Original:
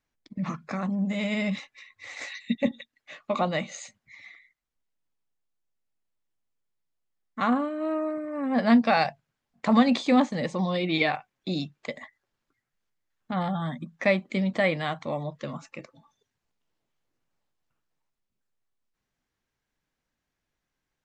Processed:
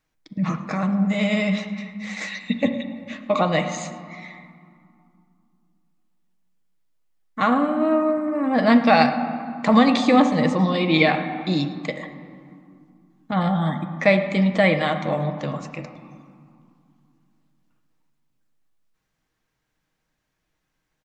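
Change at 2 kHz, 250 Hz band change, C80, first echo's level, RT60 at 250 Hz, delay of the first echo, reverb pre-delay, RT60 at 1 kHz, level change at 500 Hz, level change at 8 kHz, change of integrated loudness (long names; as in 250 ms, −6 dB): +6.5 dB, +6.0 dB, 10.0 dB, −18.5 dB, 3.4 s, 108 ms, 6 ms, 2.6 s, +7.0 dB, can't be measured, +6.0 dB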